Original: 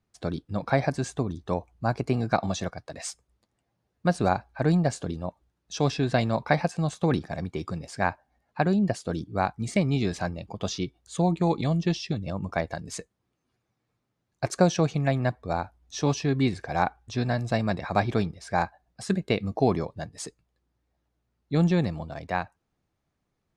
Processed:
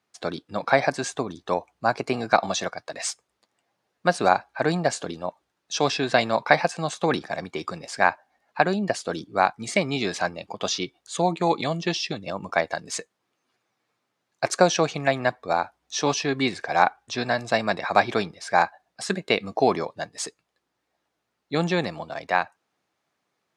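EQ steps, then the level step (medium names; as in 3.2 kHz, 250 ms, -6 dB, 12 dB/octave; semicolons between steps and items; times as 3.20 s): frequency weighting A; +7.0 dB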